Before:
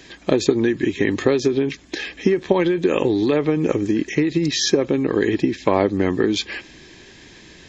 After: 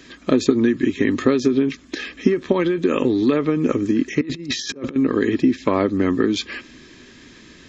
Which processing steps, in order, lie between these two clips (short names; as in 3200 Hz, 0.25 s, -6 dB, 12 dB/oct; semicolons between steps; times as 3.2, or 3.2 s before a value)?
4.21–4.96 negative-ratio compressor -26 dBFS, ratio -0.5; thirty-one-band EQ 250 Hz +10 dB, 800 Hz -7 dB, 1250 Hz +8 dB; gain -2 dB